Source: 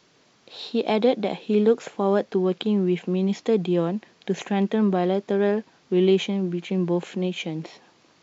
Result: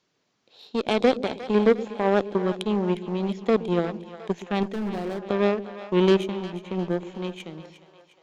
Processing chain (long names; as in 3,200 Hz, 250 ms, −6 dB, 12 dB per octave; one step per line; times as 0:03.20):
harmonic generator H 7 −19 dB, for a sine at −7.5 dBFS
echo with a time of its own for lows and highs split 480 Hz, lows 119 ms, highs 356 ms, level −13 dB
0:04.63–0:05.26: gain into a clipping stage and back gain 25.5 dB